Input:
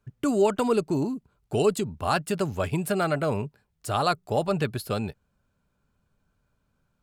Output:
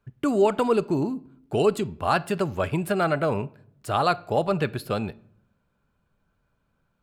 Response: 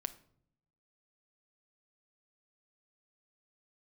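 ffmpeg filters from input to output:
-filter_complex "[0:a]asplit=2[a][b];[1:a]atrim=start_sample=2205,lowpass=4.1k,lowshelf=f=210:g=-8.5[c];[b][c]afir=irnorm=-1:irlink=0,volume=2dB[d];[a][d]amix=inputs=2:normalize=0,volume=-3.5dB"

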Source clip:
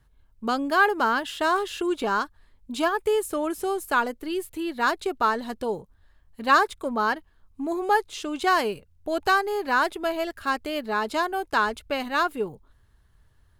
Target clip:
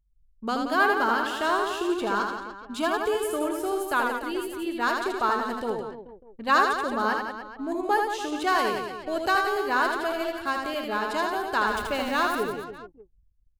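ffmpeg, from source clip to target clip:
-filter_complex "[0:a]asettb=1/sr,asplit=3[a][b][c];[a]atrim=end=11.674[d];[b]atrim=start=11.67:end=12.42,asetpts=PTS-STARTPTS,afade=t=in:d=0.004:c=qsin,afade=t=out:st=0.746:d=0.004:c=qsin,aeval=exprs='val(0)+0.5*0.0211*sgn(val(0))':c=same[e];[c]atrim=start=12.416[f];[d][e]acrossfade=d=0.004:c1=hsin:c2=qsin[g];[g][f]acrossfade=d=0.004:c1=qsin:c2=hsin,aecho=1:1:80|176|291.2|429.4|595.3:0.631|0.398|0.251|0.158|0.1,anlmdn=0.1,volume=-3dB"

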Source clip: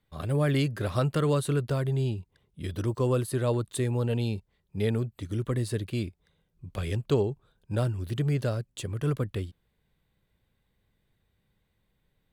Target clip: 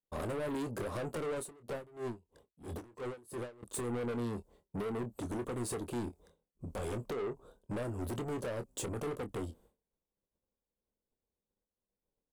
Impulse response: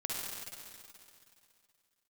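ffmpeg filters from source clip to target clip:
-filter_complex "[0:a]agate=range=-33dB:threshold=-56dB:ratio=3:detection=peak,equalizer=f=125:t=o:w=1:g=-9,equalizer=f=250:t=o:w=1:g=6,equalizer=f=500:t=o:w=1:g=9,equalizer=f=1k:t=o:w=1:g=5,equalizer=f=2k:t=o:w=1:g=-11,equalizer=f=4k:t=o:w=1:g=-6,equalizer=f=8k:t=o:w=1:g=6,alimiter=limit=-18dB:level=0:latency=1:release=256,acompressor=threshold=-31dB:ratio=4,asoftclip=type=tanh:threshold=-40dB,asplit=2[a][b];[b]adelay=25,volume=-10dB[c];[a][c]amix=inputs=2:normalize=0,asettb=1/sr,asplit=3[d][e][f];[d]atrim=end=1.404[g];[e]atrim=start=1.4:end=3.63,asetpts=PTS-STARTPTS,afade=t=in:d=0.004:c=qsin,afade=t=out:st=2.226:d=0.004:c=qsin,aeval=exprs='val(0)*pow(10,-23*(0.5-0.5*cos(2*PI*3*n/s))/20)':c=same[h];[f]atrim=start=3.626[i];[g][h]acrossfade=d=0.004:c1=hsin:c2=qsin[j];[j][i]acrossfade=d=0.004:c1=qsin:c2=hsin,volume=5dB"

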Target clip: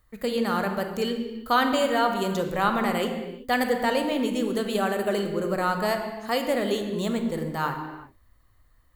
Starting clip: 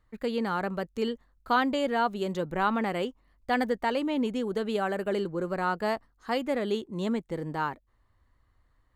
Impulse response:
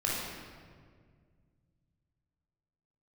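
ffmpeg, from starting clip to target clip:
-filter_complex "[0:a]aemphasis=mode=production:type=50fm,asplit=2[a][b];[1:a]atrim=start_sample=2205,afade=t=out:st=0.44:d=0.01,atrim=end_sample=19845[c];[b][c]afir=irnorm=-1:irlink=0,volume=-9dB[d];[a][d]amix=inputs=2:normalize=0"

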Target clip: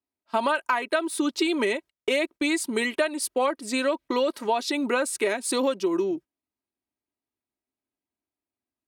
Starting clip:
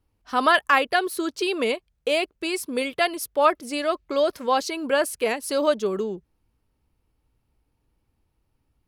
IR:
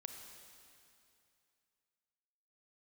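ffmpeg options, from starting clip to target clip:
-af "highpass=240,agate=range=-18dB:threshold=-41dB:ratio=16:detection=peak,aecho=1:1:2.8:0.5,acompressor=threshold=-23dB:ratio=16,asetrate=39289,aresample=44100,atempo=1.12246,volume=3dB"

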